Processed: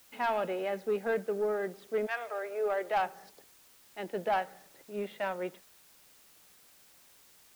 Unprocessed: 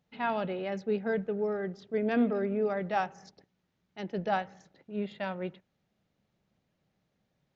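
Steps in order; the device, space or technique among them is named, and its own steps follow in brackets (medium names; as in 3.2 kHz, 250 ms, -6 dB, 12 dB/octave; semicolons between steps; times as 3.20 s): 2.05–2.97 s: high-pass 930 Hz -> 260 Hz 24 dB/octave; tape answering machine (band-pass 360–2900 Hz; saturation -25.5 dBFS, distortion -16 dB; wow and flutter 18 cents; white noise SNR 25 dB); trim +3.5 dB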